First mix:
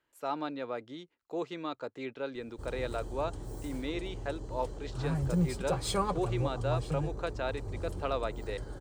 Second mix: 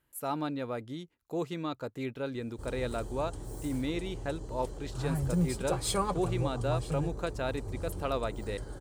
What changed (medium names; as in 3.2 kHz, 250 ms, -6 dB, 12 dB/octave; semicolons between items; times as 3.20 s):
speech: remove three-band isolator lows -13 dB, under 280 Hz, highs -14 dB, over 7.8 kHz; master: add peaking EQ 11 kHz +8.5 dB 0.9 oct